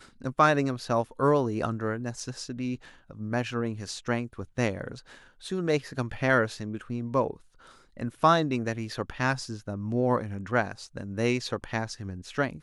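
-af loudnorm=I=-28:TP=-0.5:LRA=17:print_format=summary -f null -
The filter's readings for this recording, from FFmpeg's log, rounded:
Input Integrated:    -29.1 LUFS
Input True Peak:      -7.5 dBTP
Input LRA:             3.8 LU
Input Threshold:     -39.5 LUFS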